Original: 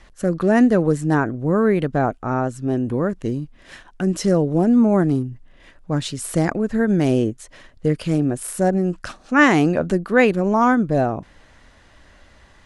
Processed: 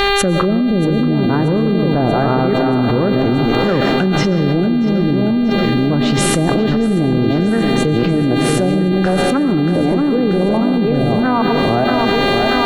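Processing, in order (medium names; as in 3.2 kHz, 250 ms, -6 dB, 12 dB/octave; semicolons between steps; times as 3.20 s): chunks repeated in reverse 423 ms, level -4.5 dB; low-pass that closes with the level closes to 300 Hz, closed at -11.5 dBFS; in parallel at +2.5 dB: peak limiter -16 dBFS, peak gain reduction 9.5 dB; on the sum: word length cut 10-bit, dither triangular; on a send: thinning echo 633 ms, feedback 66%, high-pass 180 Hz, level -10 dB; on the sum: algorithmic reverb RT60 0.89 s, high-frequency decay 0.75×, pre-delay 75 ms, DRR 9 dB; mains buzz 400 Hz, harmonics 11, -29 dBFS -3 dB/octave; level flattener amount 100%; trim -6 dB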